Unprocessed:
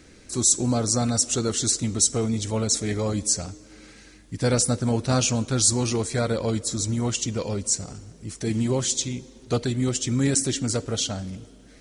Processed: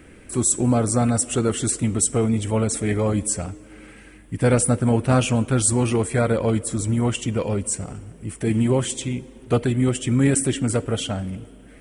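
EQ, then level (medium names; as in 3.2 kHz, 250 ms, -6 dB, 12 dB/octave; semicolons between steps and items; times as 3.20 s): high-order bell 5.1 kHz -15 dB 1.1 oct; +4.5 dB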